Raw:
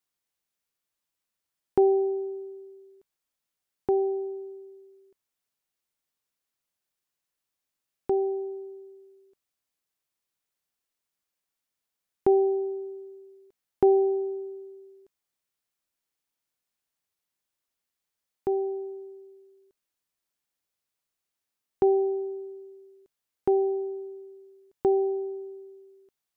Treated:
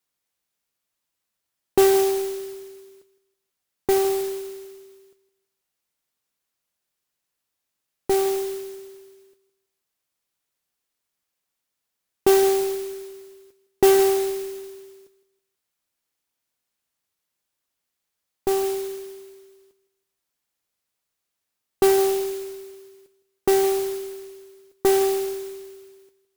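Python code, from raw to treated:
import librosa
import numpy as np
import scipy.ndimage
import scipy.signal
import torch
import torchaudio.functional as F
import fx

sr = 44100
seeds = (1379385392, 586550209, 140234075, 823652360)

y = fx.cheby_harmonics(x, sr, harmonics=(8,), levels_db=(-22,), full_scale_db=-11.5)
y = fx.echo_feedback(y, sr, ms=162, feedback_pct=33, wet_db=-16.5)
y = fx.mod_noise(y, sr, seeds[0], snr_db=12)
y = F.gain(torch.from_numpy(y), 4.0).numpy()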